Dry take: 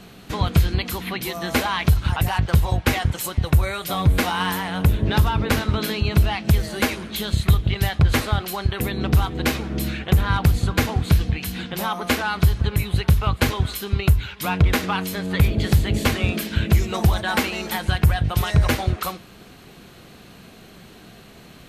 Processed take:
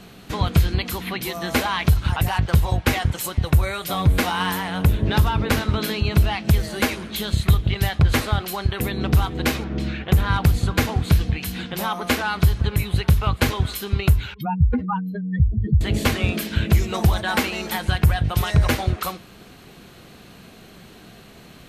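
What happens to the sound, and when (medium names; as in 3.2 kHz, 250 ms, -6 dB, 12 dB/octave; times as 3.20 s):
9.64–10.11 s: distance through air 120 m
14.34–15.81 s: spectral contrast enhancement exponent 3.3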